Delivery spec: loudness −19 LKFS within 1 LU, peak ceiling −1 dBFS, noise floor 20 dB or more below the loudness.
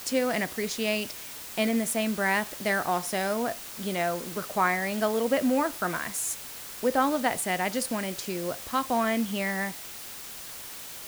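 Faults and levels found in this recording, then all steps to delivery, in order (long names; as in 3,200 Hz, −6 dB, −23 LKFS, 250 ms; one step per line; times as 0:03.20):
background noise floor −41 dBFS; target noise floor −49 dBFS; integrated loudness −28.5 LKFS; sample peak −11.5 dBFS; target loudness −19.0 LKFS
→ noise reduction from a noise print 8 dB
level +9.5 dB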